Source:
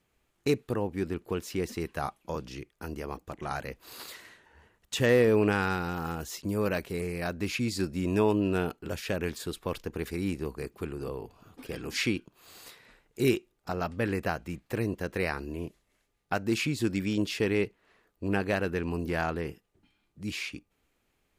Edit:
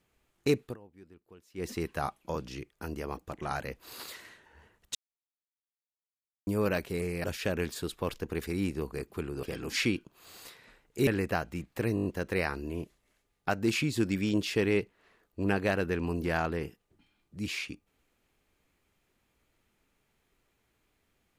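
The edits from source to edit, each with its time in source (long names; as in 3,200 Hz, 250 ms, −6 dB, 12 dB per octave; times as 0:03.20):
0:00.63–0:01.68: duck −22.5 dB, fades 0.14 s
0:04.95–0:06.47: silence
0:07.24–0:08.88: remove
0:11.07–0:11.64: remove
0:13.28–0:14.01: remove
0:14.89: stutter 0.02 s, 6 plays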